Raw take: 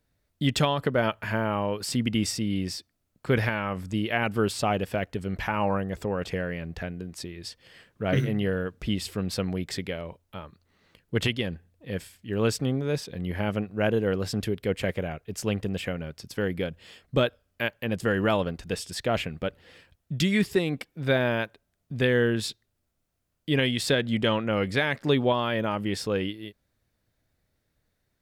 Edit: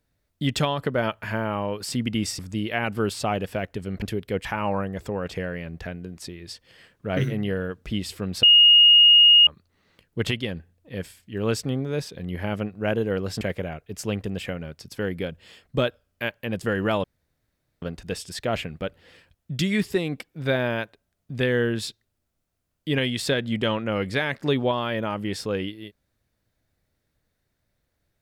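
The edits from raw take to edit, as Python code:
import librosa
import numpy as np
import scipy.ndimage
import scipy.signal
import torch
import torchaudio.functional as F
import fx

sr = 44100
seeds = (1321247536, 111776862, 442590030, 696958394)

y = fx.edit(x, sr, fx.cut(start_s=2.39, length_s=1.39),
    fx.bleep(start_s=9.39, length_s=1.04, hz=2860.0, db=-10.0),
    fx.move(start_s=14.37, length_s=0.43, to_s=5.41),
    fx.insert_room_tone(at_s=18.43, length_s=0.78), tone=tone)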